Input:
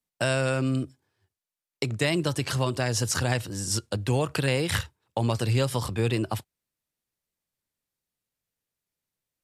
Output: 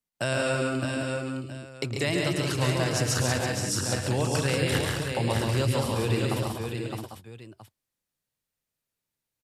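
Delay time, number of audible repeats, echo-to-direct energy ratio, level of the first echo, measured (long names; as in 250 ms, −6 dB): 109 ms, 10, 1.5 dB, −9.5 dB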